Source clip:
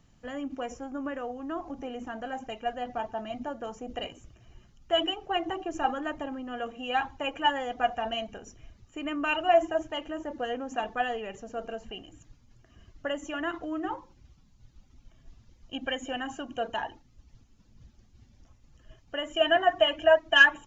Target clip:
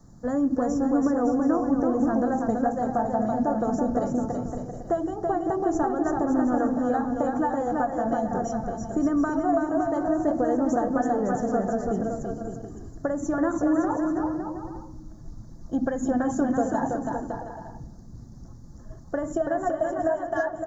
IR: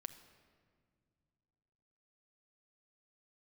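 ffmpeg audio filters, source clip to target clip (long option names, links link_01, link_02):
-filter_complex "[0:a]acompressor=threshold=-33dB:ratio=10,equalizer=frequency=200:width=0.72:gain=6,aecho=1:1:330|561|722.7|835.9|915.1:0.631|0.398|0.251|0.158|0.1,asplit=2[link_01][link_02];[1:a]atrim=start_sample=2205[link_03];[link_02][link_03]afir=irnorm=-1:irlink=0,volume=1dB[link_04];[link_01][link_04]amix=inputs=2:normalize=0,adynamicequalizer=threshold=0.00355:dfrequency=150:dqfactor=1.6:tfrequency=150:tqfactor=1.6:attack=5:release=100:ratio=0.375:range=3.5:mode=boostabove:tftype=bell,asuperstop=centerf=2700:order=4:qfactor=0.7,volume=4.5dB"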